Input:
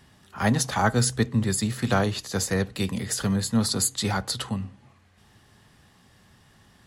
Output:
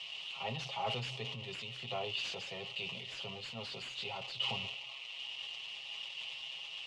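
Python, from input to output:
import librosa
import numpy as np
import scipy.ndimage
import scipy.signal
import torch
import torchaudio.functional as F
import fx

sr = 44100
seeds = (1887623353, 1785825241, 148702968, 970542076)

y = x + 0.5 * 10.0 ** (-16.0 / 20.0) * np.diff(np.sign(x), prepend=np.sign(x[:1]))
y = scipy.signal.sosfilt(scipy.signal.butter(4, 150.0, 'highpass', fs=sr, output='sos'), y)
y = fx.fixed_phaser(y, sr, hz=660.0, stages=4)
y = y + 0.8 * np.pad(y, (int(7.4 * sr / 1000.0), 0))[:len(y)]
y = np.clip(10.0 ** (13.5 / 20.0) * y, -1.0, 1.0) / 10.0 ** (13.5 / 20.0)
y = fx.ladder_lowpass(y, sr, hz=3000.0, resonance_pct=80)
y = fx.sustainer(y, sr, db_per_s=32.0)
y = y * librosa.db_to_amplitude(-3.5)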